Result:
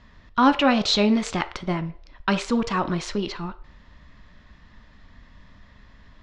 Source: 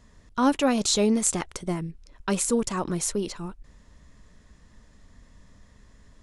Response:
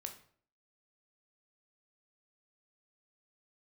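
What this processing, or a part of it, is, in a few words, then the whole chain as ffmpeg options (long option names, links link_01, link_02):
filtered reverb send: -filter_complex "[0:a]lowpass=frequency=4500:width=0.5412,lowpass=frequency=4500:width=1.3066,highshelf=frequency=6100:gain=5.5,asplit=2[link_01][link_02];[link_02]highpass=frequency=450:width=0.5412,highpass=frequency=450:width=1.3066,lowpass=4400[link_03];[1:a]atrim=start_sample=2205[link_04];[link_03][link_04]afir=irnorm=-1:irlink=0,volume=1dB[link_05];[link_01][link_05]amix=inputs=2:normalize=0,volume=3dB"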